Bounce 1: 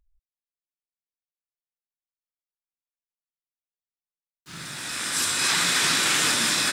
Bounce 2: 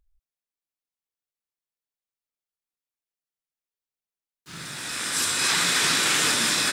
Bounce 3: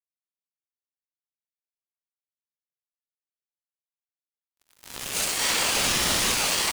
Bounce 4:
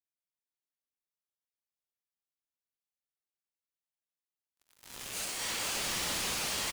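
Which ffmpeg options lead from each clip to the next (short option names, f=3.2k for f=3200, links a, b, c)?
-af "equalizer=f=450:w=4.1:g=3"
-af "acrusher=bits=3:mix=0:aa=0.5,aeval=exprs='val(0)*sin(2*PI*1100*n/s+1100*0.45/0.82*sin(2*PI*0.82*n/s))':c=same,volume=1dB"
-filter_complex "[0:a]volume=25.5dB,asoftclip=hard,volume=-25.5dB,asplit=2[a][b];[b]aecho=0:1:478:0.631[c];[a][c]amix=inputs=2:normalize=0,volume=-5.5dB"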